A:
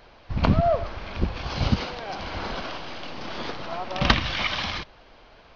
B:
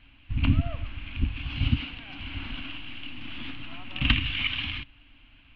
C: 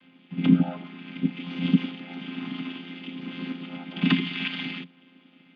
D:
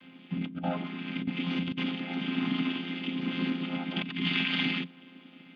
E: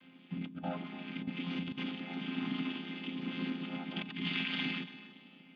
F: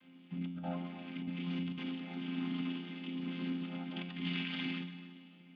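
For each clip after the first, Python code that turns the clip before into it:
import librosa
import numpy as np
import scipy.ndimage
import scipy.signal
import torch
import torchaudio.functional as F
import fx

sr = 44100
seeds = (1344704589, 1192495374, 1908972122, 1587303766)

y1 = fx.curve_eq(x, sr, hz=(120.0, 190.0, 280.0, 410.0, 1900.0, 2800.0, 5200.0), db=(0, -11, 3, -27, -7, 5, -26))
y2 = fx.chord_vocoder(y1, sr, chord='minor triad', root=53)
y2 = y2 * librosa.db_to_amplitude(6.0)
y3 = fx.over_compress(y2, sr, threshold_db=-31.0, ratio=-1.0)
y4 = fx.echo_feedback(y3, sr, ms=284, feedback_pct=33, wet_db=-15)
y4 = y4 * librosa.db_to_amplitude(-6.5)
y5 = fx.comb_fb(y4, sr, f0_hz=88.0, decay_s=0.98, harmonics='all', damping=0.0, mix_pct=80)
y5 = y5 * librosa.db_to_amplitude(7.0)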